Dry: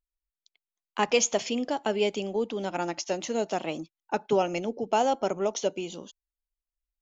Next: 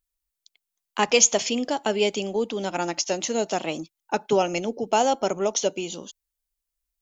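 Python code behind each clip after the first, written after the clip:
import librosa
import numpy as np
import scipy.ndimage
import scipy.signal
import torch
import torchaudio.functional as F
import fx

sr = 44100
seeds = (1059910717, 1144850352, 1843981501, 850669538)

y = fx.high_shelf(x, sr, hz=4600.0, db=9.5)
y = F.gain(torch.from_numpy(y), 3.0).numpy()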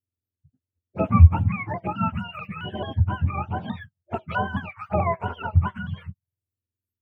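y = fx.octave_mirror(x, sr, pivot_hz=740.0)
y = fx.env_phaser(y, sr, low_hz=150.0, high_hz=4400.0, full_db=-21.0)
y = fx.vibrato_shape(y, sr, shape='saw_down', rate_hz=4.6, depth_cents=100.0)
y = F.gain(torch.from_numpy(y), -1.0).numpy()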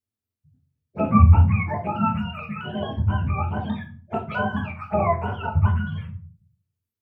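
y = fx.room_shoebox(x, sr, seeds[0], volume_m3=310.0, walls='furnished', distance_m=1.5)
y = F.gain(torch.from_numpy(y), -1.0).numpy()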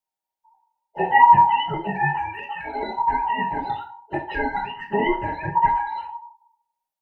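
y = fx.band_invert(x, sr, width_hz=1000)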